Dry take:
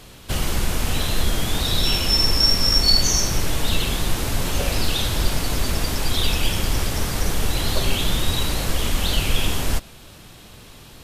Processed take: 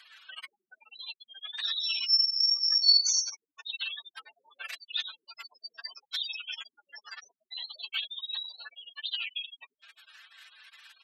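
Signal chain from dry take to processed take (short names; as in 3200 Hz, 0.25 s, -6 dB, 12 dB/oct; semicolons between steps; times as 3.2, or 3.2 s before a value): spectral gate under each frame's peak -20 dB strong; ladder high-pass 1500 Hz, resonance 60%; comb 4.5 ms, depth 31%; gain +5 dB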